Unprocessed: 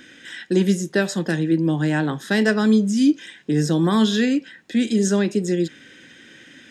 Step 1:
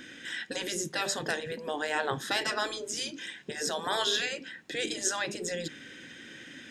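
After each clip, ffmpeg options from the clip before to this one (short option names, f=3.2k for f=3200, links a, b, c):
-af "afftfilt=real='re*lt(hypot(re,im),0.316)':imag='im*lt(hypot(re,im),0.316)':win_size=1024:overlap=0.75,volume=-1dB"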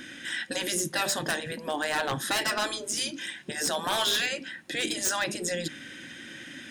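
-af "superequalizer=7b=0.501:16b=2.51,aeval=exprs='0.0668*(abs(mod(val(0)/0.0668+3,4)-2)-1)':c=same,volume=4dB"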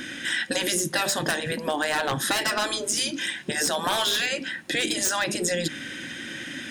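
-af "acompressor=threshold=-29dB:ratio=6,volume=7.5dB"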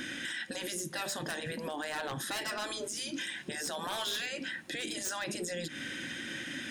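-af "alimiter=level_in=0.5dB:limit=-24dB:level=0:latency=1:release=124,volume=-0.5dB,volume=-4dB"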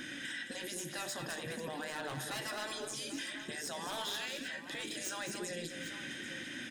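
-filter_complex "[0:a]flanger=delay=6.7:depth=1.6:regen=83:speed=1:shape=sinusoidal,asplit=2[a][b];[b]aecho=0:1:94|217|285|795:0.106|0.422|0.112|0.224[c];[a][c]amix=inputs=2:normalize=0"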